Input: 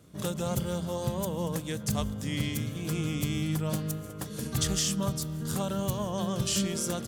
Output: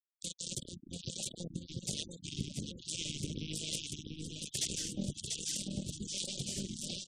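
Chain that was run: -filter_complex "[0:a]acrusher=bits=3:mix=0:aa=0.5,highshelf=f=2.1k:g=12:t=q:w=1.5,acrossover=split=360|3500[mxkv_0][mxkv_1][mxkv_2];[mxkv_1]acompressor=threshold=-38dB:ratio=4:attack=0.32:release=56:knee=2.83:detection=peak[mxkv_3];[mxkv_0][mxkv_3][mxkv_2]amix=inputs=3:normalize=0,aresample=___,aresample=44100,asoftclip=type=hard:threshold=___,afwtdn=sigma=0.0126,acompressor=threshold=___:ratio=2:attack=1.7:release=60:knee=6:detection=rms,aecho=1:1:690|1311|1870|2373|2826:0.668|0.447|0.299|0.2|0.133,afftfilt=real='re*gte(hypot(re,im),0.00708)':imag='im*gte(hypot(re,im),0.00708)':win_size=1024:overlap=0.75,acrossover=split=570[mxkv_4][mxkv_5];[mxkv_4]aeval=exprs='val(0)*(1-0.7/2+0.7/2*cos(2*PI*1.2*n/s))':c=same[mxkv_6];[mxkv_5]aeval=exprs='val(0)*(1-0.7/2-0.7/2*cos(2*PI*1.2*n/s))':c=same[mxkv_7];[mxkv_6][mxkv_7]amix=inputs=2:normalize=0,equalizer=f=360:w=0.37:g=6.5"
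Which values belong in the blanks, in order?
22050, -18.5dB, -39dB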